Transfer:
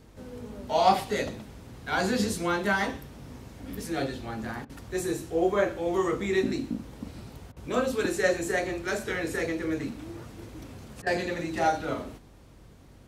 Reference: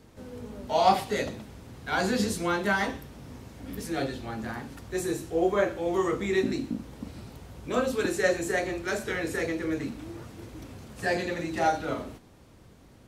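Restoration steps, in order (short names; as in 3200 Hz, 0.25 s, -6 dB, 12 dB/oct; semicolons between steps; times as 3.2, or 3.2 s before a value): de-hum 47.1 Hz, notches 3; interpolate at 4.65/7.52/11.02, 44 ms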